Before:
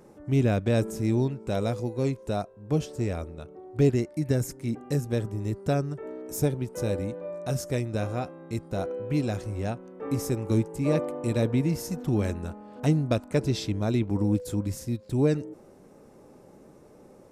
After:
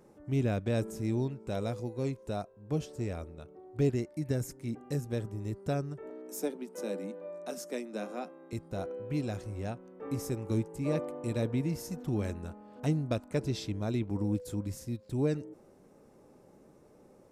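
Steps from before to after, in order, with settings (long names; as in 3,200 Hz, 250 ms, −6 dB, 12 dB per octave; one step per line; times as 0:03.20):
0:06.10–0:08.53: Butterworth high-pass 180 Hz 96 dB per octave
level −6.5 dB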